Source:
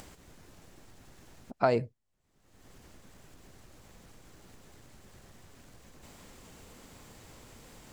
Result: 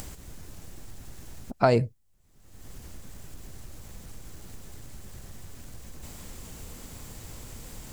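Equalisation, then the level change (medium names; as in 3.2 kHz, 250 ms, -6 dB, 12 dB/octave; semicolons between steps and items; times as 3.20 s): bass shelf 140 Hz +12 dB; treble shelf 6 kHz +11 dB; +3.5 dB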